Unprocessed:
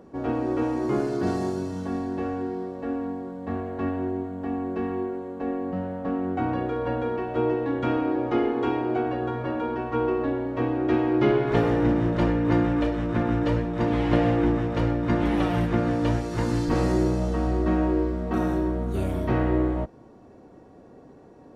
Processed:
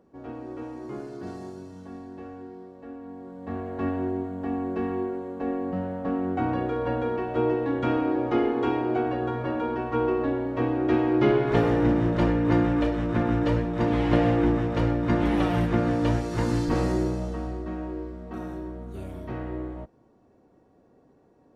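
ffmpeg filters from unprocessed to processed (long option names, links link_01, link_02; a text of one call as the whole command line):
ffmpeg -i in.wav -af "afade=type=in:start_time=3.02:duration=0.86:silence=0.266073,afade=type=out:start_time=16.53:duration=1.13:silence=0.298538" out.wav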